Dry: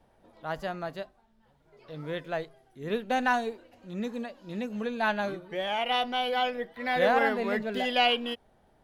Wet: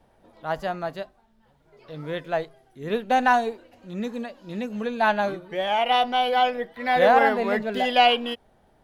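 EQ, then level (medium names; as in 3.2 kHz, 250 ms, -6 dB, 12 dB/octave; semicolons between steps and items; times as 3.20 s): dynamic bell 780 Hz, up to +5 dB, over -36 dBFS, Q 1.3; +3.5 dB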